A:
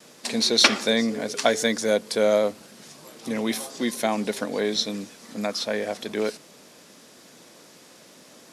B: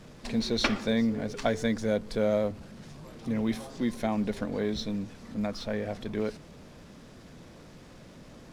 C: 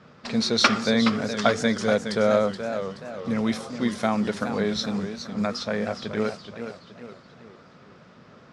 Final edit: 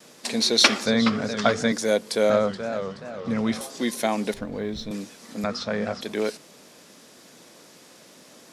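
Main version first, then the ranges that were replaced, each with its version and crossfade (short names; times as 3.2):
A
0.86–1.72 from C
2.3–3.61 from C
4.34–4.91 from B
5.44–6.01 from C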